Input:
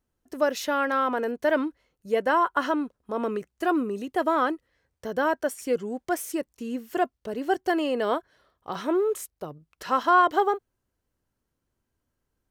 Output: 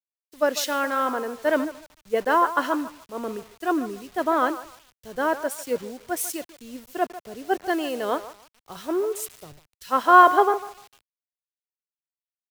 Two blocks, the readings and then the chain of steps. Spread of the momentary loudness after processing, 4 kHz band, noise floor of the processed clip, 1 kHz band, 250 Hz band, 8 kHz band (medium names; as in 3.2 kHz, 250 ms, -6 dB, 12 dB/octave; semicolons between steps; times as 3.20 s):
15 LU, +3.0 dB, under -85 dBFS, +3.5 dB, -0.5 dB, +6.5 dB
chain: band-passed feedback delay 150 ms, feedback 48%, band-pass 920 Hz, level -10 dB; bit crusher 7-bit; three bands expanded up and down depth 100%